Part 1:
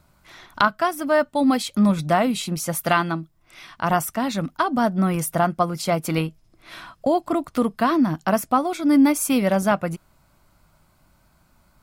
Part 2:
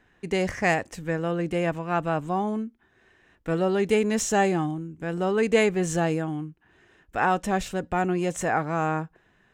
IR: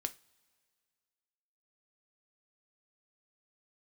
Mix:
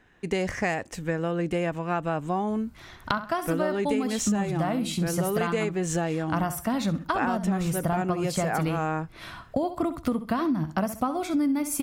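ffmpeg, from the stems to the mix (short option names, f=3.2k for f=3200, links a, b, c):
-filter_complex "[0:a]equalizer=f=65:w=0.45:g=13,adelay=2500,volume=-2.5dB,asplit=2[a][b];[b]volume=-13.5dB[c];[1:a]volume=2dB[d];[c]aecho=0:1:65|130|195|260:1|0.24|0.0576|0.0138[e];[a][d][e]amix=inputs=3:normalize=0,acompressor=threshold=-22dB:ratio=12"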